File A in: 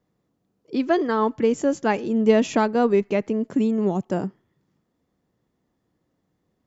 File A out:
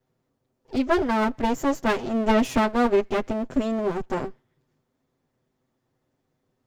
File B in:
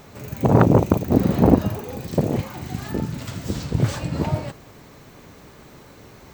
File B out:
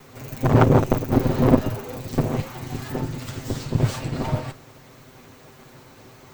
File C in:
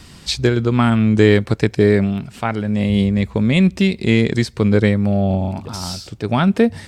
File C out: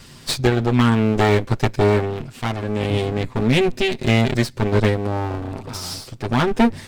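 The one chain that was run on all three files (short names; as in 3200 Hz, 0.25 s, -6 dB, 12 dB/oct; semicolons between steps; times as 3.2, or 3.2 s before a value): minimum comb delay 7.8 ms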